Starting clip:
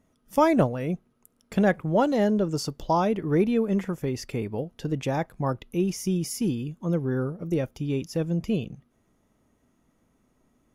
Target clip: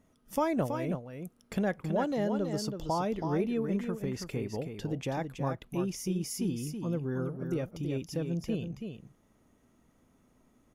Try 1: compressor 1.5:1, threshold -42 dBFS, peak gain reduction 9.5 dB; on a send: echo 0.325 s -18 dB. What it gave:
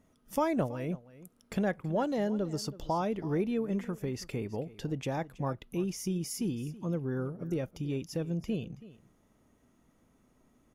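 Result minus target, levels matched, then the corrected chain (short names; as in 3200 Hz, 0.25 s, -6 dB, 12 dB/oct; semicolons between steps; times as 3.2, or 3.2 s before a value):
echo-to-direct -11 dB
compressor 1.5:1, threshold -42 dBFS, peak gain reduction 9.5 dB; on a send: echo 0.325 s -7 dB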